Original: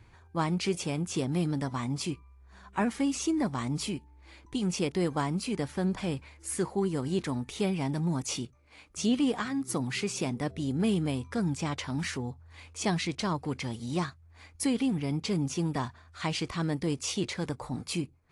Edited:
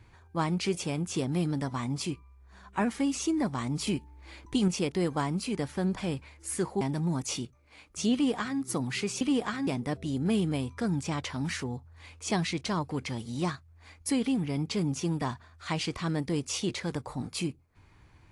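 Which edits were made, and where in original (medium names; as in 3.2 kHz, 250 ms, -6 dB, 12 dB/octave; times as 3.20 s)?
3.87–4.68 s: gain +4.5 dB
6.81–7.81 s: delete
9.13–9.59 s: copy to 10.21 s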